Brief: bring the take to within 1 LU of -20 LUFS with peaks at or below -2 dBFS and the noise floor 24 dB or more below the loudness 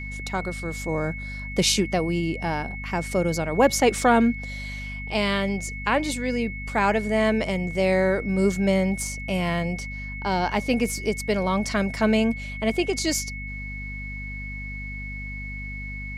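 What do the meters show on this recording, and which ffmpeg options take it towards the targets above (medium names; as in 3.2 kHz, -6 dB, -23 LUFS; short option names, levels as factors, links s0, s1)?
hum 50 Hz; highest harmonic 250 Hz; hum level -33 dBFS; steady tone 2.2 kHz; tone level -35 dBFS; loudness -25.0 LUFS; peak level -7.5 dBFS; loudness target -20.0 LUFS
-> -af "bandreject=f=50:t=h:w=6,bandreject=f=100:t=h:w=6,bandreject=f=150:t=h:w=6,bandreject=f=200:t=h:w=6,bandreject=f=250:t=h:w=6"
-af "bandreject=f=2200:w=30"
-af "volume=1.78"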